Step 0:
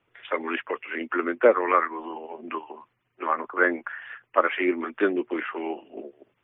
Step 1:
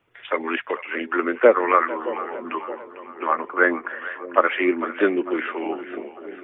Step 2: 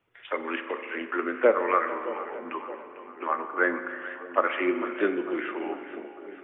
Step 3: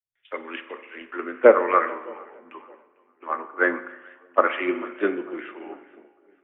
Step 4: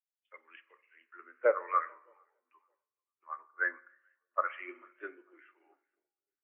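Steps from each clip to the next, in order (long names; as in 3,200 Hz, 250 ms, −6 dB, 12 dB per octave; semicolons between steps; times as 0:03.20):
echo with a time of its own for lows and highs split 600 Hz, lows 620 ms, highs 448 ms, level −13.5 dB; level +3.5 dB
spring reverb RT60 2.3 s, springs 39 ms, chirp 35 ms, DRR 8.5 dB; level −6.5 dB
multiband upward and downward expander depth 100%; level −1 dB
resonant band-pass 2,200 Hz, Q 0.61; every bin expanded away from the loudest bin 1.5 to 1; level −8 dB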